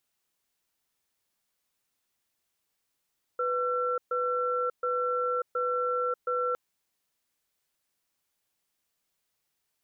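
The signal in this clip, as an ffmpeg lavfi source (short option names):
-f lavfi -i "aevalsrc='0.0376*(sin(2*PI*496*t)+sin(2*PI*1350*t))*clip(min(mod(t,0.72),0.59-mod(t,0.72))/0.005,0,1)':d=3.16:s=44100"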